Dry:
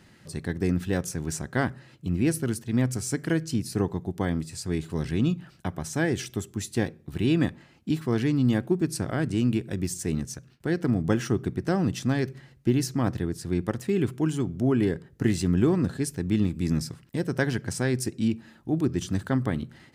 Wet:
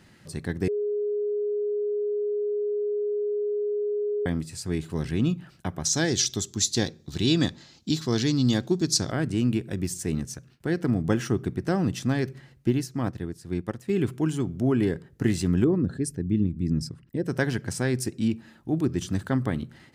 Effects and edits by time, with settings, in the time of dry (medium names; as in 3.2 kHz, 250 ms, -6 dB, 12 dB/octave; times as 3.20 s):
0.68–4.26 s: bleep 415 Hz -24 dBFS
5.85–9.12 s: high-order bell 5 kHz +15 dB 1.3 oct
12.69–13.90 s: upward expansion, over -37 dBFS
15.64–17.26 s: resonances exaggerated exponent 1.5